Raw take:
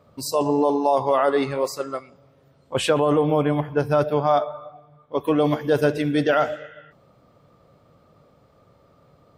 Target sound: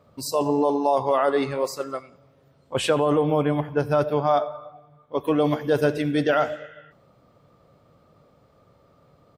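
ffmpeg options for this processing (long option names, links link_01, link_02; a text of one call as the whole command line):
ffmpeg -i in.wav -af "aecho=1:1:91|182|273:0.0668|0.0274|0.0112,volume=-1.5dB" out.wav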